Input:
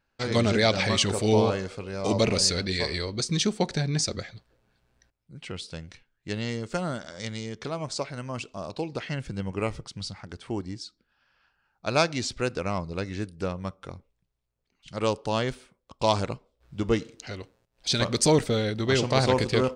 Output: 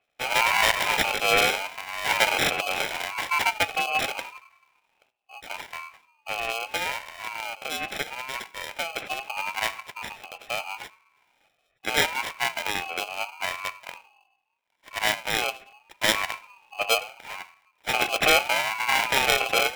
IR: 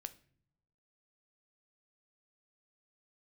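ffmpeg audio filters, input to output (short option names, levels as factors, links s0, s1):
-filter_complex "[0:a]asplit=2[s0][s1];[1:a]atrim=start_sample=2205[s2];[s1][s2]afir=irnorm=-1:irlink=0,volume=2.99[s3];[s0][s3]amix=inputs=2:normalize=0,acrusher=samples=24:mix=1:aa=0.000001,highpass=f=1700:t=q:w=9,aeval=exprs='val(0)*sin(2*PI*770*n/s+770*0.2/0.77*sin(2*PI*0.77*n/s))':c=same,volume=0.668"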